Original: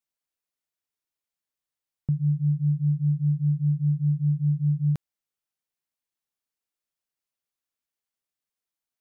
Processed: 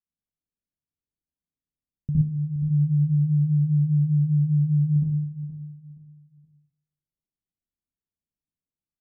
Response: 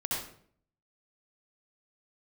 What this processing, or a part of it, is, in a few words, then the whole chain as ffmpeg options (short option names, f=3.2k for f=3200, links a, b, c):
television next door: -filter_complex "[0:a]acompressor=threshold=-23dB:ratio=6,lowpass=250[a];[1:a]atrim=start_sample=2205[b];[a][b]afir=irnorm=-1:irlink=0,asplit=3[c][d][e];[c]afade=t=out:st=2.21:d=0.02[f];[d]highpass=f=280:p=1,afade=t=in:st=2.21:d=0.02,afade=t=out:st=2.69:d=0.02[g];[e]afade=t=in:st=2.69:d=0.02[h];[f][g][h]amix=inputs=3:normalize=0,aecho=1:1:472|944|1416:0.224|0.0649|0.0188,volume=1.5dB"